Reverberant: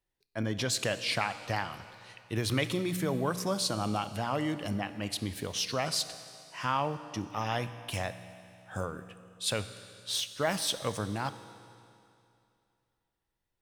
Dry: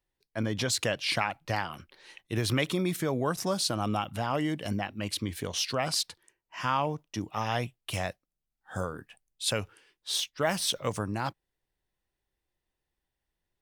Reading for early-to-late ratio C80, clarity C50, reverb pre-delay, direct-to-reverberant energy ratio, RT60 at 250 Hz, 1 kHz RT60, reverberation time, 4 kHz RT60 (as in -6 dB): 13.0 dB, 12.0 dB, 17 ms, 11.5 dB, 2.6 s, 2.6 s, 2.6 s, 2.6 s